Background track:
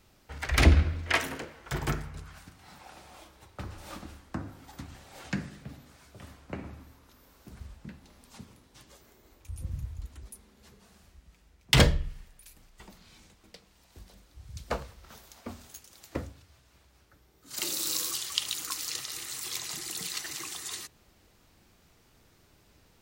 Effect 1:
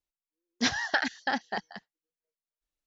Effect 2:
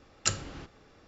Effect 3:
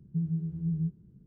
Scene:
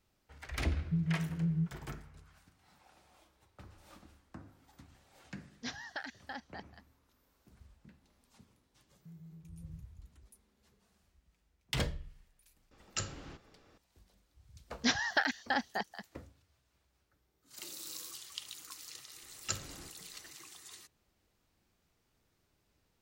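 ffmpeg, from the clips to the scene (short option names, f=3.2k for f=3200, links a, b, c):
-filter_complex "[3:a]asplit=2[a][b];[1:a]asplit=2[c][d];[2:a]asplit=2[e][f];[0:a]volume=-14dB[g];[b]alimiter=level_in=7dB:limit=-24dB:level=0:latency=1:release=71,volume=-7dB[h];[e]alimiter=limit=-15dB:level=0:latency=1:release=11[i];[a]atrim=end=1.26,asetpts=PTS-STARTPTS,volume=-2dB,afade=t=in:d=0.004:c=hsin,afade=t=out:st=1.256:d=0.004:c=hsin,adelay=770[j];[c]atrim=end=2.86,asetpts=PTS-STARTPTS,volume=-15dB,afade=t=in:d=0.004:c=hsin,afade=t=out:st=2.856:d=0.004:c=hsin,adelay=5020[k];[h]atrim=end=1.26,asetpts=PTS-STARTPTS,volume=-16.5dB,afade=t=in:d=0.004:c=hsin,afade=t=out:st=1.256:d=0.004:c=hsin,adelay=8910[l];[i]atrim=end=1.07,asetpts=PTS-STARTPTS,volume=-5.5dB,afade=t=in:d=0.004:c=hsin,afade=t=out:st=1.066:d=0.004:c=hsin,adelay=12710[m];[d]atrim=end=2.86,asetpts=PTS-STARTPTS,volume=-3dB,afade=t=in:d=0.004:c=hsin,afade=t=out:st=2.856:d=0.004:c=hsin,adelay=14230[n];[f]atrim=end=1.07,asetpts=PTS-STARTPTS,volume=-8.5dB,afade=t=in:d=0.004:c=hsin,afade=t=out:st=1.066:d=0.004:c=hsin,adelay=19230[o];[g][j][k][l][m][n][o]amix=inputs=7:normalize=0"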